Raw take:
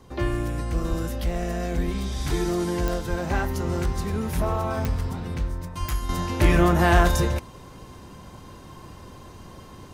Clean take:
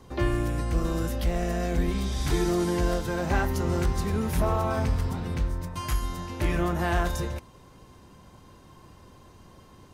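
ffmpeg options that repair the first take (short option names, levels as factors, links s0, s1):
-filter_complex "[0:a]adeclick=t=4,asplit=3[s0][s1][s2];[s0]afade=t=out:st=0.89:d=0.02[s3];[s1]highpass=f=140:w=0.5412,highpass=f=140:w=1.3066,afade=t=in:st=0.89:d=0.02,afade=t=out:st=1.01:d=0.02[s4];[s2]afade=t=in:st=1.01:d=0.02[s5];[s3][s4][s5]amix=inputs=3:normalize=0,asplit=3[s6][s7][s8];[s6]afade=t=out:st=3.09:d=0.02[s9];[s7]highpass=f=140:w=0.5412,highpass=f=140:w=1.3066,afade=t=in:st=3.09:d=0.02,afade=t=out:st=3.21:d=0.02[s10];[s8]afade=t=in:st=3.21:d=0.02[s11];[s9][s10][s11]amix=inputs=3:normalize=0,asplit=3[s12][s13][s14];[s12]afade=t=out:st=5.79:d=0.02[s15];[s13]highpass=f=140:w=0.5412,highpass=f=140:w=1.3066,afade=t=in:st=5.79:d=0.02,afade=t=out:st=5.91:d=0.02[s16];[s14]afade=t=in:st=5.91:d=0.02[s17];[s15][s16][s17]amix=inputs=3:normalize=0,asetnsamples=n=441:p=0,asendcmd='6.09 volume volume -8dB',volume=1"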